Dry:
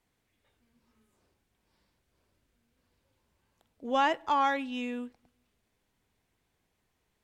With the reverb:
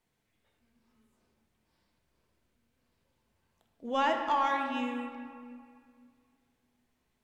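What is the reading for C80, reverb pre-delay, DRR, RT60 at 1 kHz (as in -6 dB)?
6.0 dB, 4 ms, 3.0 dB, 2.2 s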